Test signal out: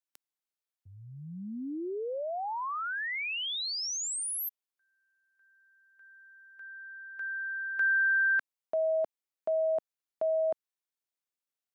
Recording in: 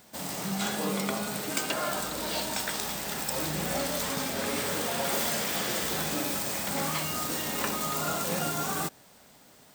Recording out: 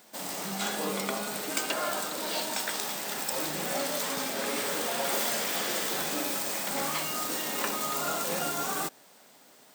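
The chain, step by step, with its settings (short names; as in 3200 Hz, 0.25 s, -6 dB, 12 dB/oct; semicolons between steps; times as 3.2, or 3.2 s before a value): HPF 250 Hz 12 dB/oct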